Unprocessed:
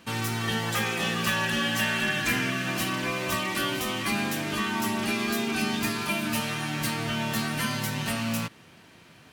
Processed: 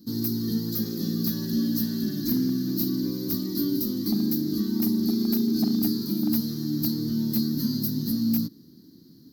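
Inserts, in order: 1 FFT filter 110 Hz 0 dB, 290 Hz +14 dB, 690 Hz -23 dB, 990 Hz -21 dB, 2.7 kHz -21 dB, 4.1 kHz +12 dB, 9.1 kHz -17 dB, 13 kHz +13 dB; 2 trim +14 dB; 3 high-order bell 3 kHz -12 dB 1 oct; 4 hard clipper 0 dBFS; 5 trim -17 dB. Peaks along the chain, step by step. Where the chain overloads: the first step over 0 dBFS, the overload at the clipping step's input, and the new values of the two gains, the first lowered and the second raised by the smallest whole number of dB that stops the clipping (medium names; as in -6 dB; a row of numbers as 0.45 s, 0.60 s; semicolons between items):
-7.0 dBFS, +7.0 dBFS, +6.5 dBFS, 0.0 dBFS, -17.0 dBFS; step 2, 6.5 dB; step 2 +7 dB, step 5 -10 dB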